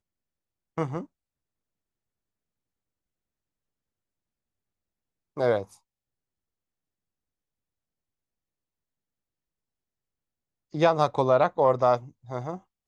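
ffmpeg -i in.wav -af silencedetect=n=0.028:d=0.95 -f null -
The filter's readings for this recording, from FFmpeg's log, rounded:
silence_start: 1.01
silence_end: 5.37 | silence_duration: 4.36
silence_start: 5.63
silence_end: 10.74 | silence_duration: 5.12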